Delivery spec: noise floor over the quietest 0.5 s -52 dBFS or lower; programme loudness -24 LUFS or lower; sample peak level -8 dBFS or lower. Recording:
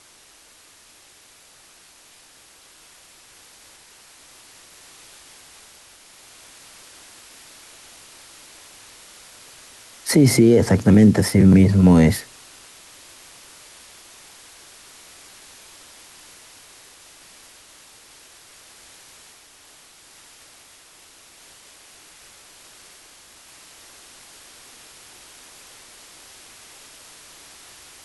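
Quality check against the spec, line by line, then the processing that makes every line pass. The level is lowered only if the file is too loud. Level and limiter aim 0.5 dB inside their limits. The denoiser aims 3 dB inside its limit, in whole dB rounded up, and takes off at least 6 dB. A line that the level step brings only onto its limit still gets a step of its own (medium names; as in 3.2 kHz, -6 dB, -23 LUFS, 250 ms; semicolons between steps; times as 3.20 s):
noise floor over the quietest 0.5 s -51 dBFS: fail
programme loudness -15.0 LUFS: fail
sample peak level -4.5 dBFS: fail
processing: trim -9.5 dB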